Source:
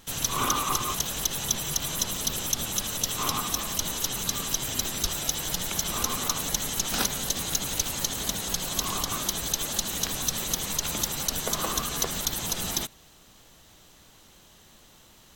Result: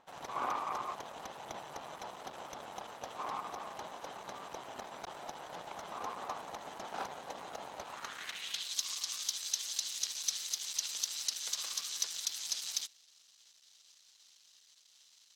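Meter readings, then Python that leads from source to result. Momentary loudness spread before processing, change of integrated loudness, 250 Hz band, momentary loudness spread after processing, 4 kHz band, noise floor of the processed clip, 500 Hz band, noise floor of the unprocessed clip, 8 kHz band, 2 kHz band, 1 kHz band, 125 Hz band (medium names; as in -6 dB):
2 LU, -11.5 dB, -19.0 dB, 12 LU, -9.5 dB, -65 dBFS, -9.0 dB, -55 dBFS, -12.0 dB, -11.5 dB, -7.0 dB, -25.0 dB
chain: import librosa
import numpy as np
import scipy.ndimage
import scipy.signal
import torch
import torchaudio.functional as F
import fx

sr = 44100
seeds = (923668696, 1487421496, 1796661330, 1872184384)

y = np.maximum(x, 0.0)
y = fx.filter_sweep_bandpass(y, sr, from_hz=780.0, to_hz=5000.0, start_s=7.81, end_s=8.77, q=2.0)
y = y * librosa.db_to_amplitude(3.0)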